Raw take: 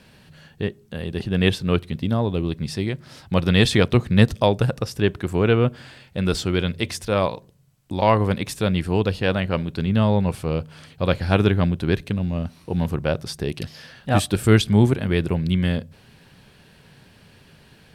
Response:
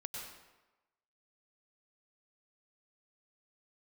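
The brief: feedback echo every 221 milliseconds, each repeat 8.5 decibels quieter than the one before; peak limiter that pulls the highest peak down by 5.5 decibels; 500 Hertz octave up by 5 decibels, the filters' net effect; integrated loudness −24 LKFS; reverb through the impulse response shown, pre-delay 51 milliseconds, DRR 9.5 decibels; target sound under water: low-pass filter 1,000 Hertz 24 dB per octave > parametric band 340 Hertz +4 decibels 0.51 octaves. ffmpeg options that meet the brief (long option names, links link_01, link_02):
-filter_complex "[0:a]equalizer=frequency=500:width_type=o:gain=4.5,alimiter=limit=-7.5dB:level=0:latency=1,aecho=1:1:221|442|663|884:0.376|0.143|0.0543|0.0206,asplit=2[link_01][link_02];[1:a]atrim=start_sample=2205,adelay=51[link_03];[link_02][link_03]afir=irnorm=-1:irlink=0,volume=-8.5dB[link_04];[link_01][link_04]amix=inputs=2:normalize=0,lowpass=frequency=1000:width=0.5412,lowpass=frequency=1000:width=1.3066,equalizer=frequency=340:width_type=o:width=0.51:gain=4,volume=-4dB"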